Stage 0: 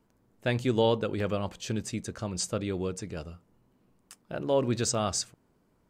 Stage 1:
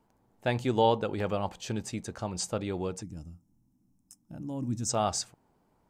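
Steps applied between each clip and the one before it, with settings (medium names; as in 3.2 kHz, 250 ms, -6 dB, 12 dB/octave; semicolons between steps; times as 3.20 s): peaking EQ 820 Hz +10 dB 0.51 oct; time-frequency box 3.02–4.89 s, 340–5100 Hz -19 dB; trim -2 dB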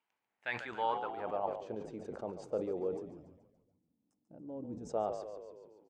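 frequency-shifting echo 142 ms, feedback 56%, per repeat -61 Hz, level -10 dB; band-pass sweep 2.5 kHz -> 470 Hz, 0.22–1.85 s; decay stretcher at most 82 dB/s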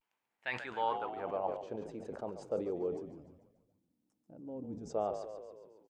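vibrato 0.58 Hz 74 cents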